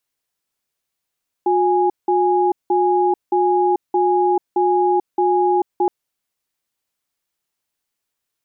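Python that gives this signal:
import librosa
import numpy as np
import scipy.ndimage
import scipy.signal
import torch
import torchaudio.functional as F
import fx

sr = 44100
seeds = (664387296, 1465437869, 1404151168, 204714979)

y = fx.cadence(sr, length_s=4.42, low_hz=360.0, high_hz=828.0, on_s=0.44, off_s=0.18, level_db=-16.0)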